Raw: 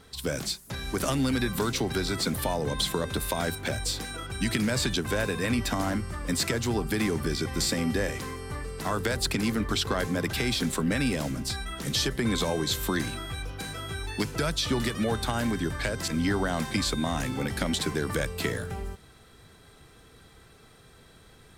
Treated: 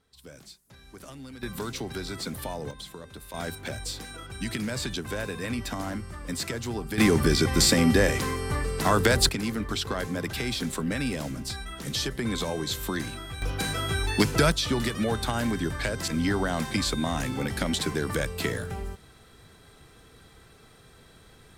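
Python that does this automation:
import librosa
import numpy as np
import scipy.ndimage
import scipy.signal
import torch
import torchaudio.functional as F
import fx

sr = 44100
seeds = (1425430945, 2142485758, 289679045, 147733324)

y = fx.gain(x, sr, db=fx.steps((0.0, -17.0), (1.43, -6.0), (2.71, -14.0), (3.34, -4.5), (6.98, 7.0), (9.29, -2.5), (13.42, 7.0), (14.52, 0.5)))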